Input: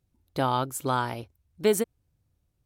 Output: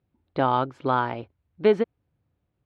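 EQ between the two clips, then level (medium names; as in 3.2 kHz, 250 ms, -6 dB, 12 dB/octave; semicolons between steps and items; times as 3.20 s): high-pass 200 Hz 6 dB/octave; low-pass 4.8 kHz 12 dB/octave; distance through air 330 m; +5.5 dB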